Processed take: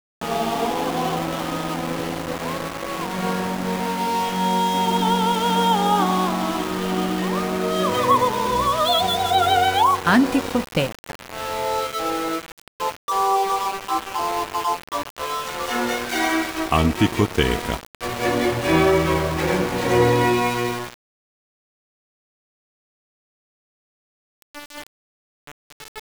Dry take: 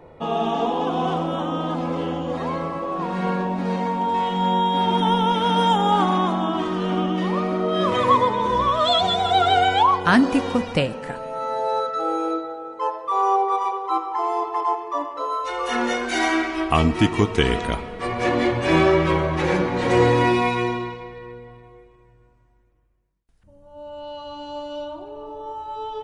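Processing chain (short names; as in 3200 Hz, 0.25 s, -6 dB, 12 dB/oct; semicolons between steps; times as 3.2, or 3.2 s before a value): sample gate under -25 dBFS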